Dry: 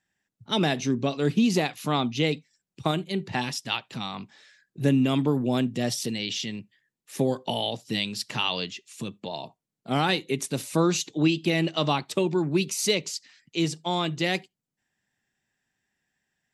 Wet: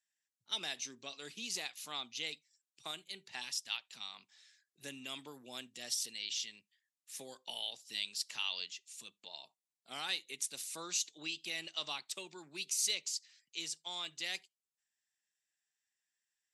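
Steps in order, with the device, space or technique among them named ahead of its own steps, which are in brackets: piezo pickup straight into a mixer (LPF 8900 Hz 12 dB/oct; differentiator); gain -2 dB

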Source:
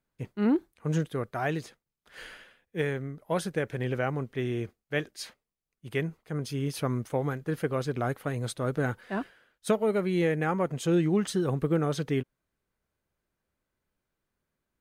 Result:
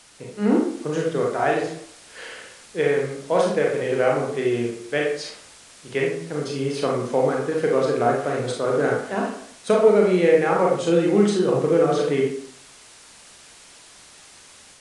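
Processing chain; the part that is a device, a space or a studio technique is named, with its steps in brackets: filmed off a television (BPF 230–7700 Hz; bell 510 Hz +5 dB 0.77 oct; reverb RT60 0.65 s, pre-delay 30 ms, DRR -2 dB; white noise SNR 22 dB; AGC gain up to 4 dB; AAC 96 kbps 22050 Hz)

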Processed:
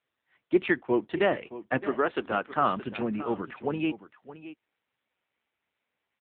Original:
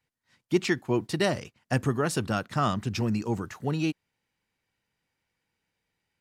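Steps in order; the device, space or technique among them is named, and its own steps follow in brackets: 1.78–2.32 HPF 250 Hz 24 dB/oct; satellite phone (BPF 300–3300 Hz; echo 0.619 s -14.5 dB; gain +3.5 dB; AMR-NB 6.7 kbps 8000 Hz)

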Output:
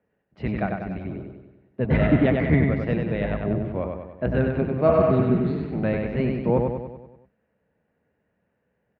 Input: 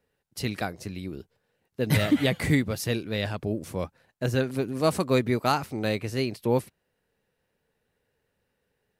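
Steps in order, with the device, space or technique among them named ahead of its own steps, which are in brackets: sub-octave bass pedal (octaver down 1 oct, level +3 dB; speaker cabinet 77–2300 Hz, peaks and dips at 95 Hz -7 dB, 200 Hz +5 dB, 640 Hz +6 dB); 3.24–3.76 LPF 4400 Hz; 4.91–5.61 spectral repair 470–3300 Hz both; feedback echo 96 ms, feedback 54%, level -4 dB

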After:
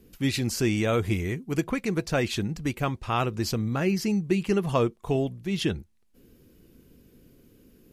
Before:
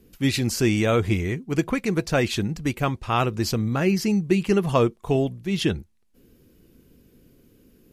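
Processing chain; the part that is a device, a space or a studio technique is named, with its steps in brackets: parallel compression (in parallel at -3 dB: compressor, threshold -33 dBFS, peak gain reduction 17.5 dB); 0.93–1.61 on the sum: bell 12000 Hz +7 dB 0.79 oct; gain -5 dB

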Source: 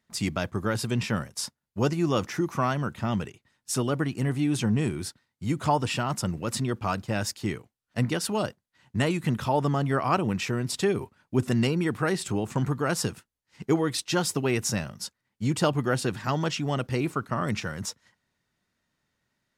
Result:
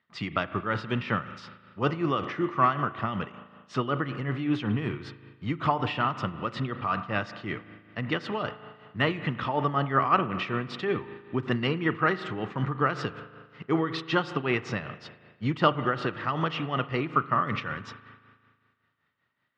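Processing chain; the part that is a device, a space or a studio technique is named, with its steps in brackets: combo amplifier with spring reverb and tremolo (spring tank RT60 1.8 s, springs 37 ms, chirp 75 ms, DRR 11 dB; tremolo 5.3 Hz, depth 59%; speaker cabinet 98–3800 Hz, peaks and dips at 210 Hz -3 dB, 1200 Hz +10 dB, 1900 Hz +6 dB, 3000 Hz +4 dB)

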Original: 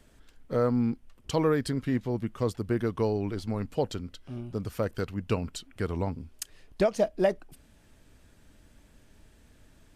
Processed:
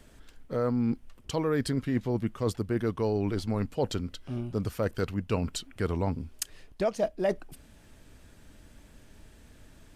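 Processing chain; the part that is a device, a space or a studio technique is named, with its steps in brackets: compression on the reversed sound (reverse; compressor 6:1, threshold -28 dBFS, peak gain reduction 9.5 dB; reverse); gain +4 dB

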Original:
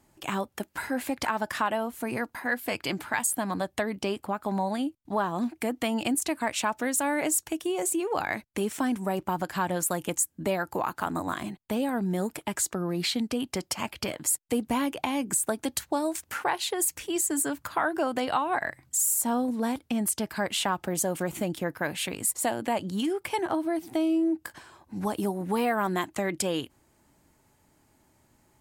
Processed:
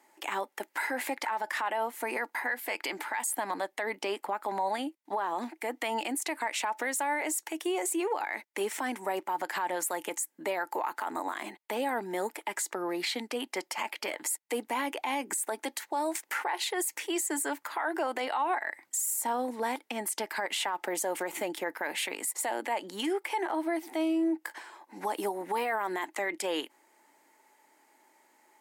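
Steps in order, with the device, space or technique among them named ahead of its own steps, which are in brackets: laptop speaker (HPF 320 Hz 24 dB/oct; bell 880 Hz +8.5 dB 0.24 oct; bell 2000 Hz +9 dB 0.44 oct; limiter -22 dBFS, peak gain reduction 13 dB)

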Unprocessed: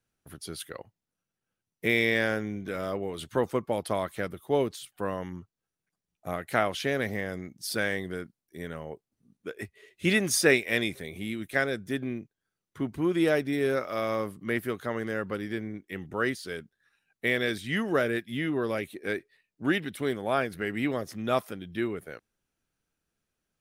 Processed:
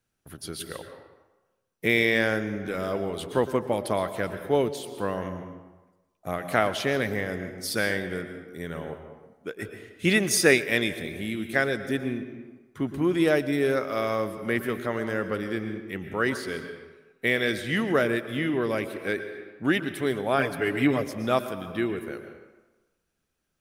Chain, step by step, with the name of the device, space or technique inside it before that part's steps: compressed reverb return (on a send at -6 dB: reverb RT60 1.1 s, pre-delay 0.108 s + compressor 10:1, threshold -29 dBFS, peak gain reduction 13 dB); 20.38–21.02 on the sum: comb 6.9 ms, depth 77%; gain +2.5 dB

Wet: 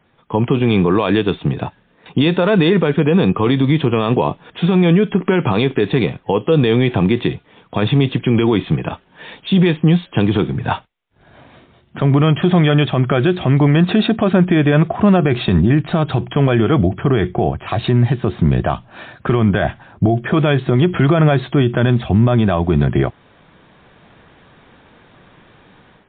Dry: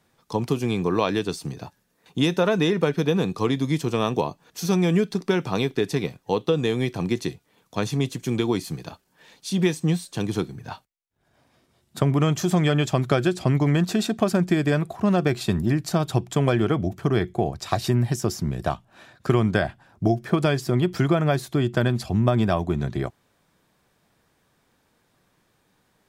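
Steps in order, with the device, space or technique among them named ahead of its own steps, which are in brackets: low-bitrate web radio (AGC gain up to 12 dB; limiter -12.5 dBFS, peak gain reduction 11.5 dB; gain +8 dB; MP3 32 kbps 8000 Hz)

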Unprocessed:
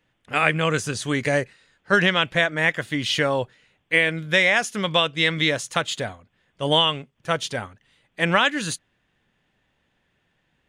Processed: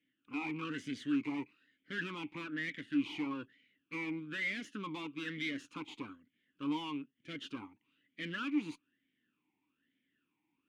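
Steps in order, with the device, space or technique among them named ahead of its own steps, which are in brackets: talk box (tube stage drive 27 dB, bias 0.65; vowel sweep i-u 1.1 Hz); gain +4 dB

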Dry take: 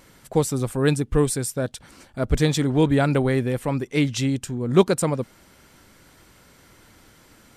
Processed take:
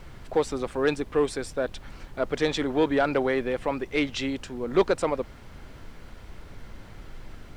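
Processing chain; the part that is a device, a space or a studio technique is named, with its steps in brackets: aircraft cabin announcement (BPF 390–3700 Hz; soft clip -13.5 dBFS, distortion -17 dB; brown noise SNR 13 dB); gain +1.5 dB

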